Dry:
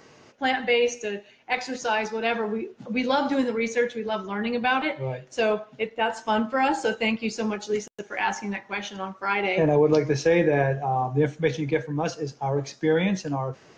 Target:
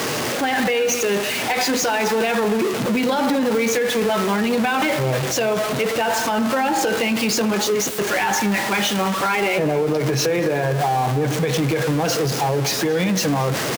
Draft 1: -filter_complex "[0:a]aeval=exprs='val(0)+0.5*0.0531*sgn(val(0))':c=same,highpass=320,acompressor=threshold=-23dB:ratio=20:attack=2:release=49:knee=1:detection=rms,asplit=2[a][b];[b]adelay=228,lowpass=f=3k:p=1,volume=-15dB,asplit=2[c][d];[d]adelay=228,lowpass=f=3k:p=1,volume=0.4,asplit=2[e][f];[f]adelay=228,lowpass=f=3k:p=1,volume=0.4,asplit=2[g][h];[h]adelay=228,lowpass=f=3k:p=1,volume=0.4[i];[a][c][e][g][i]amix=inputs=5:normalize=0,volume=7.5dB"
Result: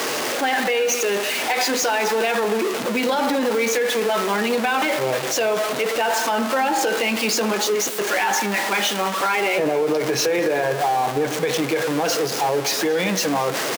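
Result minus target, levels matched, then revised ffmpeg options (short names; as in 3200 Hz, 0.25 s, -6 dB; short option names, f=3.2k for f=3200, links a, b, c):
125 Hz band -10.0 dB
-filter_complex "[0:a]aeval=exprs='val(0)+0.5*0.0531*sgn(val(0))':c=same,highpass=91,acompressor=threshold=-23dB:ratio=20:attack=2:release=49:knee=1:detection=rms,asplit=2[a][b];[b]adelay=228,lowpass=f=3k:p=1,volume=-15dB,asplit=2[c][d];[d]adelay=228,lowpass=f=3k:p=1,volume=0.4,asplit=2[e][f];[f]adelay=228,lowpass=f=3k:p=1,volume=0.4,asplit=2[g][h];[h]adelay=228,lowpass=f=3k:p=1,volume=0.4[i];[a][c][e][g][i]amix=inputs=5:normalize=0,volume=7.5dB"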